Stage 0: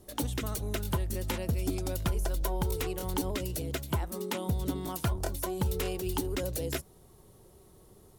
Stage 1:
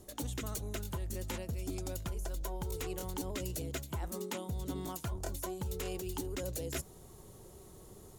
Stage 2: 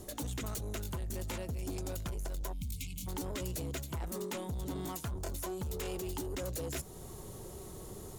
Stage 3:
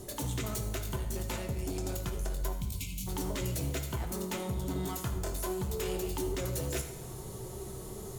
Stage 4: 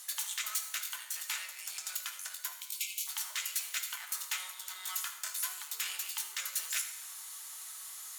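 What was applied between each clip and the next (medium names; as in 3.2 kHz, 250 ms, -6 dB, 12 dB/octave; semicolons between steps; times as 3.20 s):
reverse; compression 6:1, threshold -39 dBFS, peak gain reduction 13 dB; reverse; peaking EQ 6.9 kHz +7 dB 0.3 oct; trim +3 dB
in parallel at +0.5 dB: compression, threshold -46 dBFS, peak gain reduction 12 dB; on the sum: saturation -35 dBFS, distortion -13 dB; time-frequency box 2.52–3.07 s, 290–2100 Hz -30 dB; trim +1.5 dB
reverberation RT60 1.1 s, pre-delay 4 ms, DRR 3 dB; trim +2 dB
high-pass 1.4 kHz 24 dB/octave; trim +5.5 dB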